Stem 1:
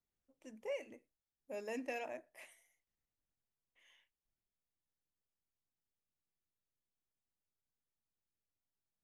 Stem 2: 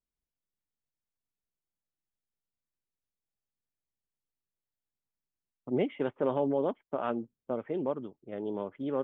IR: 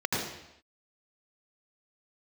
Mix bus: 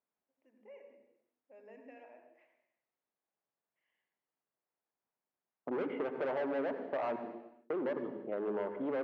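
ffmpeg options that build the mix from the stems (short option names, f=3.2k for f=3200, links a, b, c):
-filter_complex "[0:a]volume=-16.5dB,asplit=2[a][b];[b]volume=-11dB[c];[1:a]equalizer=f=770:w=0.75:g=7.5,asoftclip=type=hard:threshold=-28.5dB,volume=0.5dB,asplit=3[d][e][f];[d]atrim=end=7.16,asetpts=PTS-STARTPTS,afade=t=out:st=7.156:d=0.004:c=hsin[g];[e]atrim=start=7.16:end=7.7,asetpts=PTS-STARTPTS,volume=0[h];[f]atrim=start=7.7,asetpts=PTS-STARTPTS,afade=t=in:d=0.004:c=hsin[i];[g][h][i]concat=n=3:v=0:a=1,asplit=2[j][k];[k]volume=-18.5dB[l];[2:a]atrim=start_sample=2205[m];[c][l]amix=inputs=2:normalize=0[n];[n][m]afir=irnorm=-1:irlink=0[o];[a][j][o]amix=inputs=3:normalize=0,highpass=200,lowpass=2.1k,acompressor=threshold=-36dB:ratio=2"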